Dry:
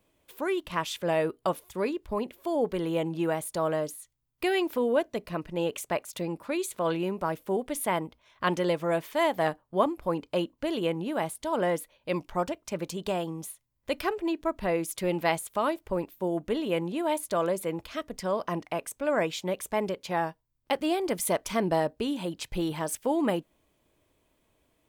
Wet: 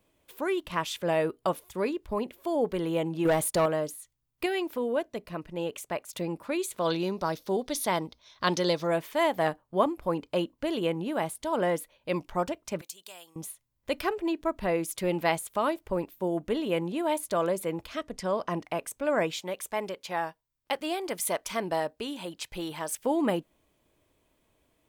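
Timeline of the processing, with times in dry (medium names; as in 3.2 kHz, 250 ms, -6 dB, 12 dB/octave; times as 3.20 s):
3.25–3.66 s: waveshaping leveller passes 2
4.46–6.09 s: gain -3.5 dB
6.79–8.87 s: high-order bell 4.7 kHz +12.5 dB 1 oct
12.81–13.36 s: differentiator
17.95–18.56 s: low-pass 11 kHz
19.41–22.99 s: bass shelf 410 Hz -10 dB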